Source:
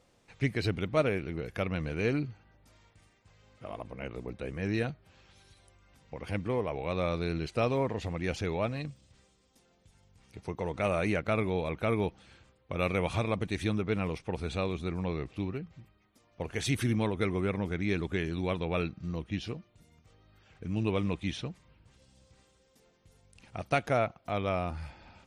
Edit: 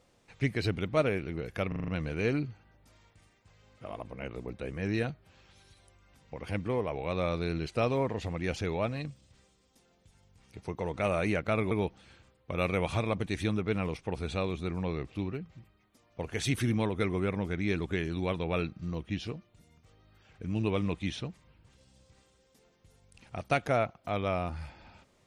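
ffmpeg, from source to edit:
-filter_complex "[0:a]asplit=7[s0][s1][s2][s3][s4][s5][s6];[s0]atrim=end=1.722[s7];[s1]atrim=start=1.678:end=1.722[s8];[s2]atrim=start=1.678:end=1.722[s9];[s3]atrim=start=1.678:end=1.722[s10];[s4]atrim=start=1.678:end=1.722[s11];[s5]atrim=start=1.678:end=11.512[s12];[s6]atrim=start=11.918[s13];[s7][s8]acrossfade=d=0.004:c1=hsin:c2=hsin[s14];[s14][s9]acrossfade=d=0.004:c1=hsin:c2=hsin[s15];[s15][s10]acrossfade=d=0.004:c1=hsin:c2=hsin[s16];[s16][s11]acrossfade=d=0.004:c1=hsin:c2=hsin[s17];[s17][s12]acrossfade=d=0.004:c1=hsin:c2=hsin[s18];[s18][s13]acrossfade=d=0.004:c1=hsin:c2=hsin"

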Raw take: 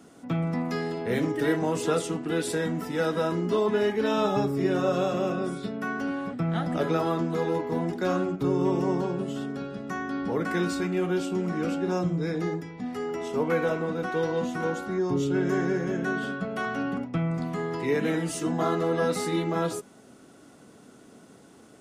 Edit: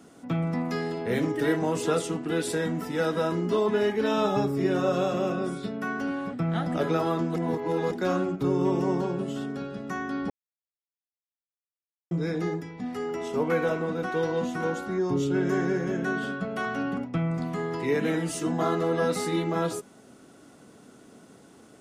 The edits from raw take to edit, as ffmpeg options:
-filter_complex "[0:a]asplit=5[s0][s1][s2][s3][s4];[s0]atrim=end=7.362[s5];[s1]atrim=start=7.358:end=7.912,asetpts=PTS-STARTPTS,areverse[s6];[s2]atrim=start=7.908:end=10.3,asetpts=PTS-STARTPTS,afade=t=out:st=2.388:d=0.004:c=hsin[s7];[s3]atrim=start=10.3:end=12.11,asetpts=PTS-STARTPTS,volume=0[s8];[s4]atrim=start=12.11,asetpts=PTS-STARTPTS,afade=t=in:d=0.004:c=hsin[s9];[s5][s6]acrossfade=d=0.004:c1=hsin:c2=hsin[s10];[s7][s8][s9]concat=n=3:v=0:a=1[s11];[s10][s11]acrossfade=d=0.004:c1=hsin:c2=hsin"

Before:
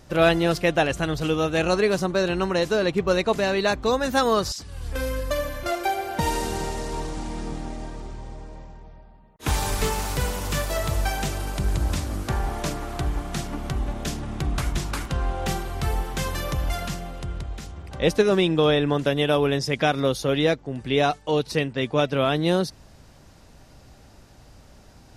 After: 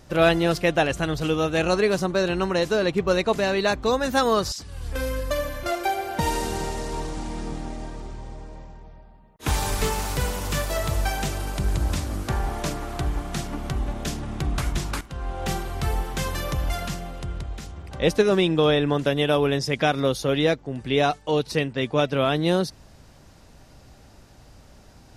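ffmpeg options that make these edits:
-filter_complex "[0:a]asplit=2[s0][s1];[s0]atrim=end=15.01,asetpts=PTS-STARTPTS,afade=t=out:st=15.006:d=0.004:c=hsin:silence=0.188365[s2];[s1]atrim=start=15.01,asetpts=PTS-STARTPTS,afade=t=in:d=0.53:silence=0.188365[s3];[s2][s3]concat=n=2:v=0:a=1"

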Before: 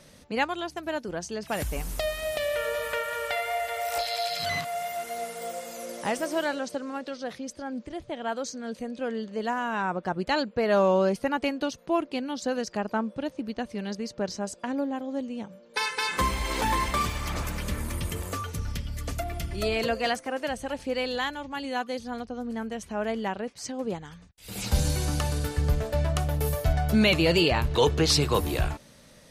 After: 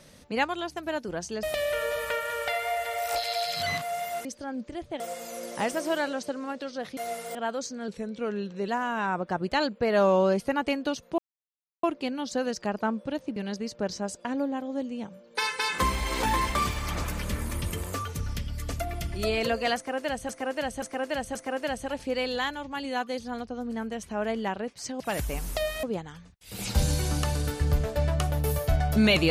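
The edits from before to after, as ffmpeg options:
-filter_complex "[0:a]asplit=15[s0][s1][s2][s3][s4][s5][s6][s7][s8][s9][s10][s11][s12][s13][s14];[s0]atrim=end=1.432[s15];[s1]atrim=start=2.258:end=5.082[s16];[s2]atrim=start=7.428:end=8.182[s17];[s3]atrim=start=5.458:end=7.432[s18];[s4]atrim=start=5.078:end=5.462[s19];[s5]atrim=start=8.178:end=8.714[s20];[s6]atrim=start=8.71:end=9.44,asetpts=PTS-STARTPTS,asetrate=40131,aresample=44100[s21];[s7]atrim=start=9.436:end=11.94,asetpts=PTS-STARTPTS,afade=t=out:st=2.5:d=0.004:c=hsin,apad=pad_dur=0.65[s22];[s8]atrim=start=11.94:end=13.472,asetpts=PTS-STARTPTS,afade=t=in:d=0.004:c=hsin[s23];[s9]atrim=start=13.748:end=20.682[s24];[s10]atrim=start=20.148:end=20.682[s25];[s11]atrim=start=20.148:end=20.682[s26];[s12]atrim=start=20.148:end=23.802[s27];[s13]atrim=start=1.428:end=2.262[s28];[s14]atrim=start=23.798[s29];[s15][s16]acrossfade=d=0.004:c1=hsin:c2=hsin[s30];[s30][s17]acrossfade=d=0.004:c1=hsin:c2=hsin[s31];[s31][s18]acrossfade=d=0.004:c1=hsin:c2=hsin[s32];[s32][s19]acrossfade=d=0.004:c1=hsin:c2=hsin[s33];[s33][s20]acrossfade=d=0.004:c1=hsin:c2=hsin[s34];[s34][s21]acrossfade=d=0.004:c1=hsin:c2=hsin[s35];[s22][s23]concat=n=2:v=0:a=1[s36];[s35][s36]acrossfade=d=0.004:c1=hsin:c2=hsin[s37];[s37][s24]acrossfade=d=0.004:c1=hsin:c2=hsin[s38];[s38][s25]acrossfade=d=0.004:c1=hsin:c2=hsin[s39];[s39][s26]acrossfade=d=0.004:c1=hsin:c2=hsin[s40];[s40][s27]acrossfade=d=0.004:c1=hsin:c2=hsin[s41];[s41][s28]acrossfade=d=0.004:c1=hsin:c2=hsin[s42];[s42][s29]acrossfade=d=0.004:c1=hsin:c2=hsin"

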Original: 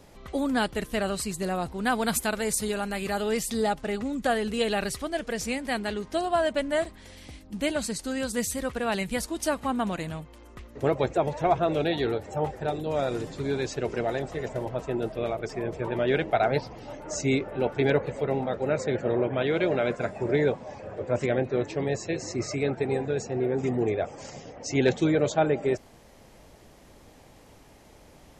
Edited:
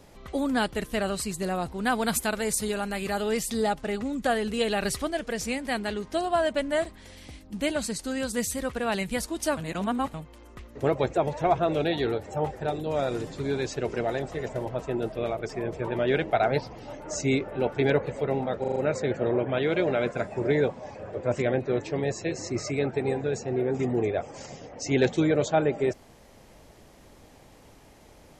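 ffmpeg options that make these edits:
-filter_complex "[0:a]asplit=9[s0][s1][s2][s3][s4][s5][s6][s7][s8];[s0]atrim=end=4.842[s9];[s1]atrim=start=4.838:end=5.112,asetpts=PTS-STARTPTS,volume=1.41[s10];[s2]atrim=start=5.108:end=9.572[s11];[s3]atrim=start=9.568:end=10.142,asetpts=PTS-STARTPTS,areverse[s12];[s4]atrim=start=10.138:end=18.642[s13];[s5]atrim=start=18.598:end=18.642[s14];[s6]atrim=start=18.598:end=18.642[s15];[s7]atrim=start=18.598:end=18.642[s16];[s8]atrim=start=18.598[s17];[s9][s10]acrossfade=d=0.004:c1=hsin:c2=hsin[s18];[s18][s11]acrossfade=d=0.004:c1=hsin:c2=hsin[s19];[s19][s12]acrossfade=d=0.004:c1=hsin:c2=hsin[s20];[s20][s13]acrossfade=d=0.004:c1=hsin:c2=hsin[s21];[s21][s14]acrossfade=d=0.004:c1=hsin:c2=hsin[s22];[s22][s15]acrossfade=d=0.004:c1=hsin:c2=hsin[s23];[s23][s16]acrossfade=d=0.004:c1=hsin:c2=hsin[s24];[s24][s17]acrossfade=d=0.004:c1=hsin:c2=hsin"

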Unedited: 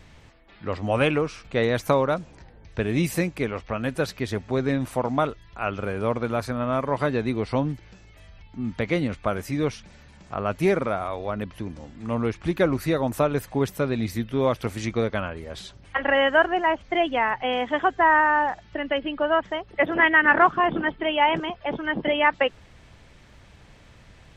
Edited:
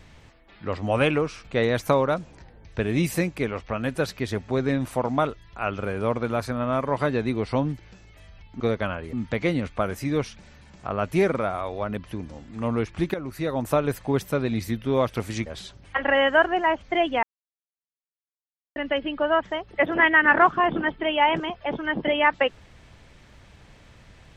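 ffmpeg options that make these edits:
-filter_complex "[0:a]asplit=7[s0][s1][s2][s3][s4][s5][s6];[s0]atrim=end=8.602[s7];[s1]atrim=start=14.928:end=15.462[s8];[s2]atrim=start=8.598:end=12.61,asetpts=PTS-STARTPTS,afade=t=out:st=4.008:d=0.004:c=hsin:silence=0.188365[s9];[s3]atrim=start=12.61:end=14.932,asetpts=PTS-STARTPTS,afade=t=in:d=0.59:silence=0.188365[s10];[s4]atrim=start=15.458:end=17.23,asetpts=PTS-STARTPTS,afade=t=out:st=1.768:d=0.004:c=hsin[s11];[s5]atrim=start=17.23:end=18.76,asetpts=PTS-STARTPTS,volume=0[s12];[s6]atrim=start=18.76,asetpts=PTS-STARTPTS,afade=t=in:d=0.004:c=hsin[s13];[s7][s8]acrossfade=d=0.004:c1=hsin:c2=hsin[s14];[s9][s10]concat=n=2:v=0:a=1[s15];[s14][s15]acrossfade=d=0.004:c1=hsin:c2=hsin[s16];[s11][s12][s13]concat=n=3:v=0:a=1[s17];[s16][s17]acrossfade=d=0.004:c1=hsin:c2=hsin"

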